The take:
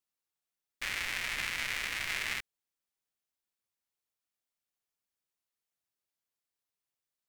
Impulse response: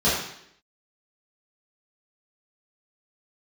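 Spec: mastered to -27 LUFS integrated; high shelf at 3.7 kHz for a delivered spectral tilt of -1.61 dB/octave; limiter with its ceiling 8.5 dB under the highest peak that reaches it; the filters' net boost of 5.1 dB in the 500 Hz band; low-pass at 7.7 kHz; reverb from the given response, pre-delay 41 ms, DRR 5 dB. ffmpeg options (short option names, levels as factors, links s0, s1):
-filter_complex "[0:a]lowpass=7700,equalizer=f=500:t=o:g=6.5,highshelf=f=3700:g=-4.5,alimiter=level_in=1.68:limit=0.0631:level=0:latency=1,volume=0.596,asplit=2[s0][s1];[1:a]atrim=start_sample=2205,adelay=41[s2];[s1][s2]afir=irnorm=-1:irlink=0,volume=0.0794[s3];[s0][s3]amix=inputs=2:normalize=0,volume=4.47"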